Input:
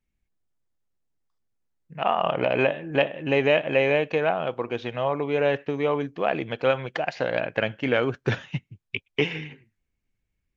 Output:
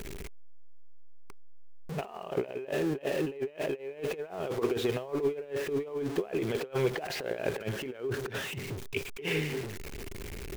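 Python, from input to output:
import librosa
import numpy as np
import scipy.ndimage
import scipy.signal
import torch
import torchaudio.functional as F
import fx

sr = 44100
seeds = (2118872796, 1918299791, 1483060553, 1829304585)

y = x + 0.5 * 10.0 ** (-32.5 / 20.0) * np.sign(x)
y = fx.over_compress(y, sr, threshold_db=-29.0, ratio=-0.5)
y = fx.peak_eq(y, sr, hz=400.0, db=14.5, octaves=0.35)
y = y * librosa.db_to_amplitude(-7.0)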